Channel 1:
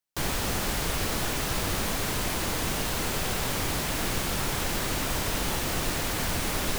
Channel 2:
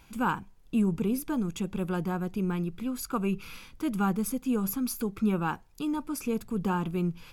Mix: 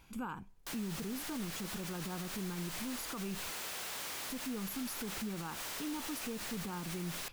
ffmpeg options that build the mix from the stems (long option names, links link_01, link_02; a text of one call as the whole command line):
ffmpeg -i stem1.wav -i stem2.wav -filter_complex "[0:a]highpass=frequency=1100:poles=1,asoftclip=type=tanh:threshold=-30.5dB,adelay=500,volume=-6.5dB[link_01];[1:a]volume=-5dB,asplit=3[link_02][link_03][link_04];[link_02]atrim=end=3.5,asetpts=PTS-STARTPTS,afade=type=out:start_time=3.496:duration=0.004:curve=hsin[link_05];[link_03]atrim=start=3.5:end=4.3,asetpts=PTS-STARTPTS,volume=0[link_06];[link_04]atrim=start=4.3,asetpts=PTS-STARTPTS,afade=type=in:duration=0.004:curve=hsin[link_07];[link_05][link_06][link_07]concat=n=3:v=0:a=1[link_08];[link_01][link_08]amix=inputs=2:normalize=0,alimiter=level_in=8dB:limit=-24dB:level=0:latency=1:release=61,volume=-8dB" out.wav